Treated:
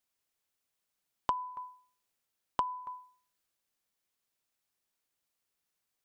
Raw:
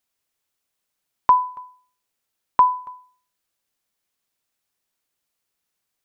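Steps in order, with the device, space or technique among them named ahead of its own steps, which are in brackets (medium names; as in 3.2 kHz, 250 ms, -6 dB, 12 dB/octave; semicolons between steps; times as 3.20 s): drum-bus smash (transient shaper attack +6 dB, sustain +2 dB; compression 20:1, threshold -21 dBFS, peak gain reduction 17.5 dB; saturation -9.5 dBFS, distortion -14 dB); trim -5.5 dB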